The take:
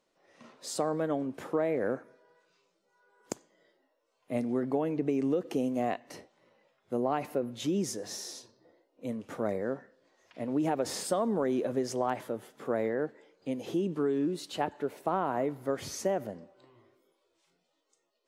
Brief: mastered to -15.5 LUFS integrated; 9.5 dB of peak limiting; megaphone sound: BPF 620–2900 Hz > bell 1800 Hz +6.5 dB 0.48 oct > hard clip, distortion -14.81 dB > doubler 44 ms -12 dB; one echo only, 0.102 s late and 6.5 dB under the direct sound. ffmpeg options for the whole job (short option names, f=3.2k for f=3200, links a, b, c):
-filter_complex "[0:a]alimiter=level_in=1dB:limit=-24dB:level=0:latency=1,volume=-1dB,highpass=620,lowpass=2.9k,equalizer=f=1.8k:t=o:w=0.48:g=6.5,aecho=1:1:102:0.473,asoftclip=type=hard:threshold=-33.5dB,asplit=2[a][b];[b]adelay=44,volume=-12dB[c];[a][c]amix=inputs=2:normalize=0,volume=26.5dB"